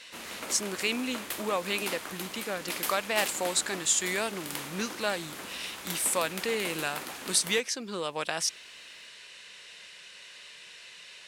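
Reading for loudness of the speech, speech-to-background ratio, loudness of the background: -30.5 LUFS, 7.0 dB, -37.5 LUFS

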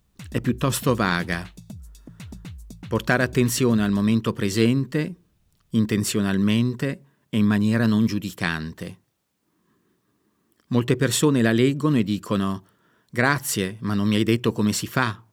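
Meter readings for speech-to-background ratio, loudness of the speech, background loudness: 20.0 dB, -22.5 LUFS, -42.5 LUFS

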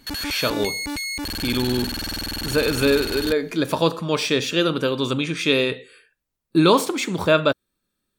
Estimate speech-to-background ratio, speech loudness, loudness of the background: 5.5 dB, -21.5 LUFS, -27.0 LUFS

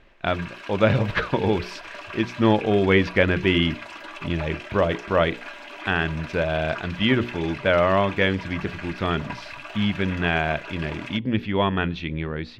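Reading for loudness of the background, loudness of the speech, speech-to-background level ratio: -37.0 LUFS, -23.5 LUFS, 13.5 dB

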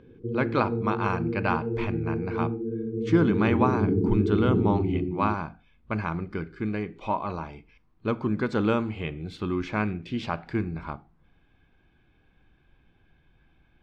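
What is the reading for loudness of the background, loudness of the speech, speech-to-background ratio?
-28.5 LUFS, -29.0 LUFS, -0.5 dB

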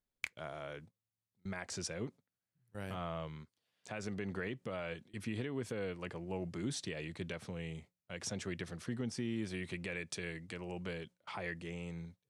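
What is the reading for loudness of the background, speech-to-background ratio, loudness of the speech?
-44.5 LUFS, 2.0 dB, -42.5 LUFS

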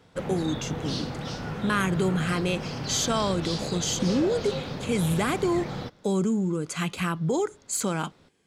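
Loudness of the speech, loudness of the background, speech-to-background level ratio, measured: -27.5 LUFS, -33.5 LUFS, 6.0 dB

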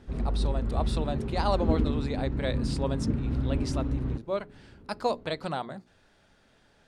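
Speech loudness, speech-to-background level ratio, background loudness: -34.0 LUFS, -3.5 dB, -30.5 LUFS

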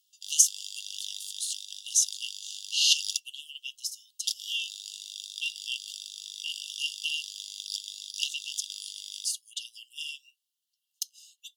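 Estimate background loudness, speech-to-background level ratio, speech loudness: -37.5 LUFS, 7.5 dB, -30.0 LUFS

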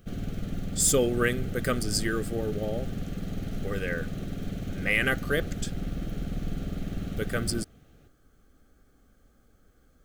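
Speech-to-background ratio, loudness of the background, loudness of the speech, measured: 6.5 dB, -35.5 LUFS, -29.0 LUFS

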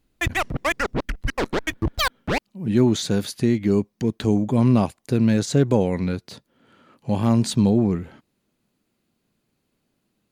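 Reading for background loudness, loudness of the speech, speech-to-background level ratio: -25.5 LUFS, -21.0 LUFS, 4.5 dB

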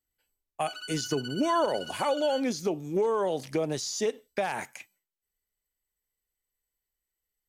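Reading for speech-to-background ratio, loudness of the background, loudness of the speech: 11.0 dB, -40.5 LUFS, -29.5 LUFS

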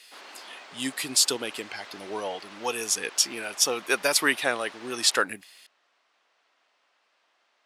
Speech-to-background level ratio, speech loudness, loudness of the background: 19.5 dB, -25.5 LUFS, -45.0 LUFS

